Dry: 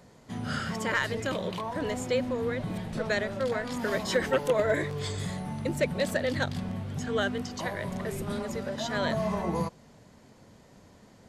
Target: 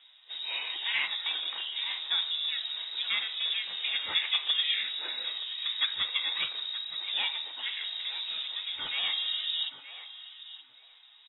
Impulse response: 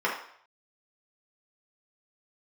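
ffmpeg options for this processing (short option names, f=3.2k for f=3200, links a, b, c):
-filter_complex "[0:a]asplit=2[a][b];[b]asetrate=29433,aresample=44100,atempo=1.49831,volume=-3dB[c];[a][c]amix=inputs=2:normalize=0,lowpass=f=3.3k:t=q:w=0.5098,lowpass=f=3.3k:t=q:w=0.6013,lowpass=f=3.3k:t=q:w=0.9,lowpass=f=3.3k:t=q:w=2.563,afreqshift=-3900,asplit=2[d][e];[e]adelay=924,lowpass=f=2.7k:p=1,volume=-11dB,asplit=2[f][g];[g]adelay=924,lowpass=f=2.7k:p=1,volume=0.19,asplit=2[h][i];[i]adelay=924,lowpass=f=2.7k:p=1,volume=0.19[j];[d][f][h][j]amix=inputs=4:normalize=0,asplit=2[k][l];[1:a]atrim=start_sample=2205[m];[l][m]afir=irnorm=-1:irlink=0,volume=-18.5dB[n];[k][n]amix=inputs=2:normalize=0,volume=-5dB" -ar 12000 -c:a libmp3lame -b:a 16k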